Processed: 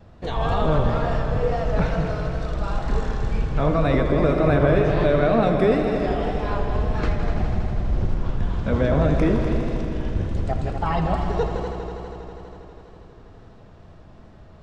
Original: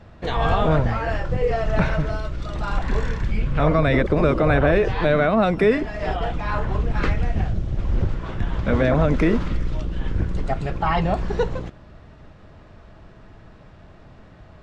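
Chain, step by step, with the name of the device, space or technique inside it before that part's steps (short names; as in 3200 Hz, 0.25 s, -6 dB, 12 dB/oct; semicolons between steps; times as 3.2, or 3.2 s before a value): multi-head tape echo (multi-head echo 81 ms, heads all three, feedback 75%, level -12 dB; wow and flutter); bell 2000 Hz -5.5 dB 1.4 oct; gain -2 dB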